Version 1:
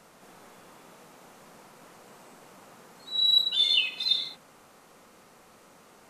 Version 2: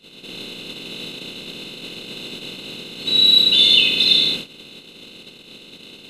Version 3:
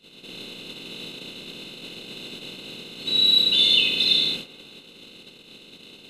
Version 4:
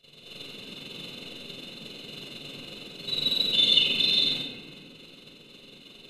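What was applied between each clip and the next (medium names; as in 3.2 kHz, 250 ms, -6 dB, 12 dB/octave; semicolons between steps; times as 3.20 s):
spectral levelling over time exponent 0.4; resonant low shelf 540 Hz +11.5 dB, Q 1.5; gate -33 dBFS, range -28 dB; trim +7 dB
feedback echo behind a band-pass 70 ms, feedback 83%, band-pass 850 Hz, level -15 dB; trim -5 dB
AM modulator 22 Hz, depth 60%; reverberation RT60 1.7 s, pre-delay 7 ms, DRR -1.5 dB; trim -5 dB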